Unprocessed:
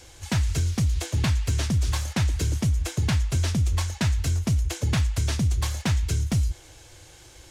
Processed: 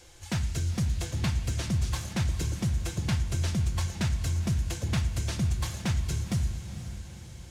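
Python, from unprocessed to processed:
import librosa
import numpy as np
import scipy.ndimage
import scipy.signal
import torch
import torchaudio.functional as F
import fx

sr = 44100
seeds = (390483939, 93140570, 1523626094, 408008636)

p1 = x + fx.echo_diffused(x, sr, ms=489, feedback_pct=48, wet_db=-11.0, dry=0)
p2 = fx.room_shoebox(p1, sr, seeds[0], volume_m3=3200.0, walls='furnished', distance_m=0.85)
y = p2 * 10.0 ** (-5.5 / 20.0)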